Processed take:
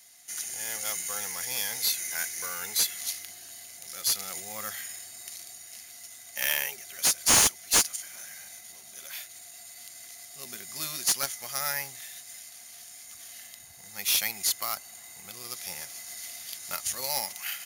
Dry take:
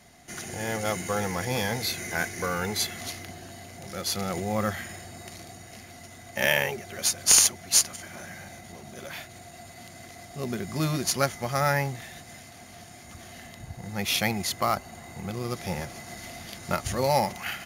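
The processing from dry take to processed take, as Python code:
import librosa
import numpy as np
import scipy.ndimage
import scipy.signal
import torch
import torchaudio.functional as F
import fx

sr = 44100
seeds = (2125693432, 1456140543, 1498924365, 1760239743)

y = F.preemphasis(torch.from_numpy(x), 0.97).numpy()
y = fx.slew_limit(y, sr, full_power_hz=470.0)
y = y * librosa.db_to_amplitude(6.0)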